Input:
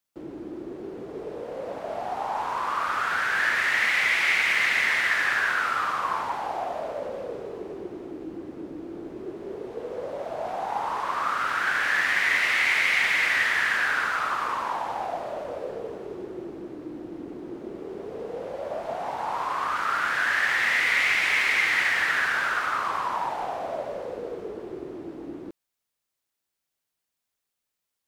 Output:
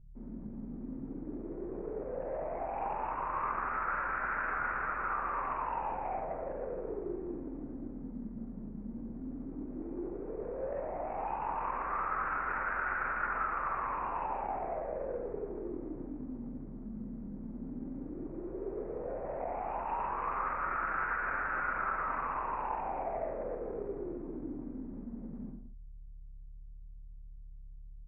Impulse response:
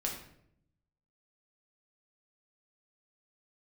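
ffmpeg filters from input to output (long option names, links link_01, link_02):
-filter_complex "[0:a]highpass=150,adynamicsmooth=sensitivity=0.5:basefreq=1900,aresample=8000,asoftclip=type=tanh:threshold=-21.5dB,aresample=44100,aeval=exprs='val(0)+0.00316*(sin(2*PI*50*n/s)+sin(2*PI*2*50*n/s)/2+sin(2*PI*3*50*n/s)/3+sin(2*PI*4*50*n/s)/4+sin(2*PI*5*50*n/s)/5)':channel_layout=same[link_01];[1:a]atrim=start_sample=2205,afade=type=out:start_time=0.28:duration=0.01,atrim=end_sample=12789[link_02];[link_01][link_02]afir=irnorm=-1:irlink=0,areverse,acompressor=mode=upward:threshold=-37dB:ratio=2.5,areverse,asetrate=30296,aresample=44100,atempo=1.45565,volume=-8.5dB"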